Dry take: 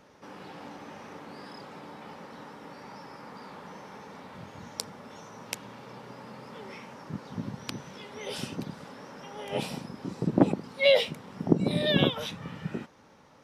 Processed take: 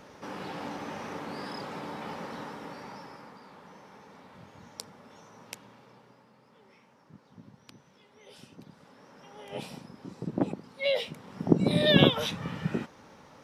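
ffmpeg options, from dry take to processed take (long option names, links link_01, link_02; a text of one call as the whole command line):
ffmpeg -i in.wav -af "volume=26dB,afade=type=out:start_time=2.28:duration=1.12:silence=0.237137,afade=type=out:start_time=5.44:duration=0.85:silence=0.334965,afade=type=in:start_time=8.48:duration=0.87:silence=0.354813,afade=type=in:start_time=10.96:duration=1.02:silence=0.281838" out.wav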